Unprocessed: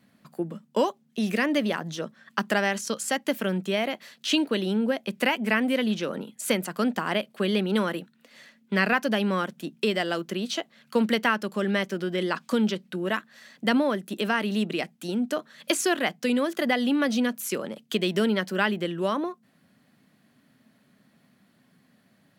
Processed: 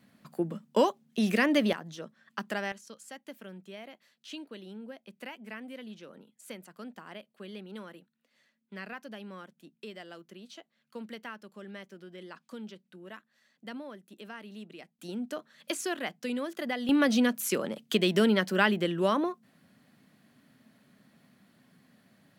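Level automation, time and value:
−0.5 dB
from 0:01.73 −9.5 dB
from 0:02.72 −19 dB
from 0:14.99 −9 dB
from 0:16.89 0 dB

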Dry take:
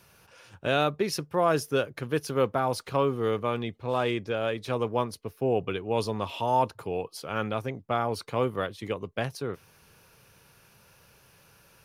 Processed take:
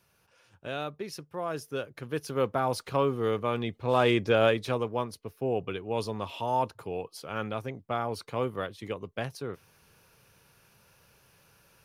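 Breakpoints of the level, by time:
0:01.49 −10 dB
0:02.63 −1 dB
0:03.46 −1 dB
0:04.43 +7 dB
0:04.88 −3.5 dB

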